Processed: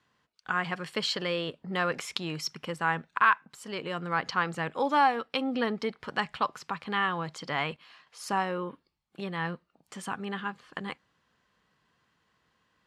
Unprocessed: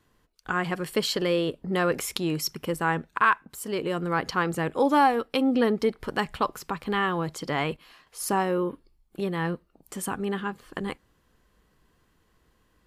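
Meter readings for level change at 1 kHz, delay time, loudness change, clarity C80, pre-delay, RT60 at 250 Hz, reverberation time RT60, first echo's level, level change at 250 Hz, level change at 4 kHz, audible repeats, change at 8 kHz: −2.0 dB, no echo audible, −3.5 dB, no reverb audible, no reverb audible, no reverb audible, no reverb audible, no echo audible, −7.5 dB, −1.0 dB, no echo audible, −8.5 dB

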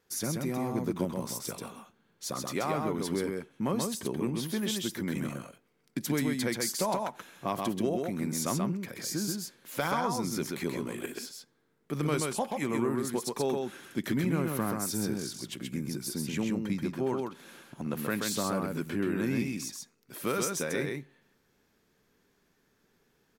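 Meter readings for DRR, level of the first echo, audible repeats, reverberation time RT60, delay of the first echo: no reverb audible, −3.5 dB, 1, no reverb audible, 131 ms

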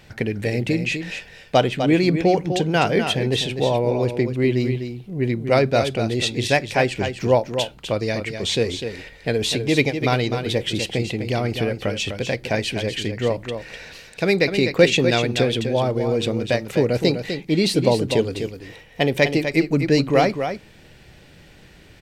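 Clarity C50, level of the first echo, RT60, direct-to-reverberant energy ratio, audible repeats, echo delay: no reverb audible, −8.0 dB, no reverb audible, no reverb audible, 1, 251 ms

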